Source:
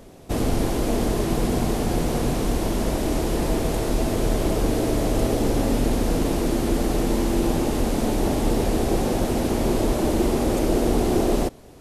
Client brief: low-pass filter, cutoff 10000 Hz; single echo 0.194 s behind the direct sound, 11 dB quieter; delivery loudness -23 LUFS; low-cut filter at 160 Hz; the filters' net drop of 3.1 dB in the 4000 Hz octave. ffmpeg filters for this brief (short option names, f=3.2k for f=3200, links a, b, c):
-af "highpass=160,lowpass=10k,equalizer=f=4k:t=o:g=-4,aecho=1:1:194:0.282,volume=1.5dB"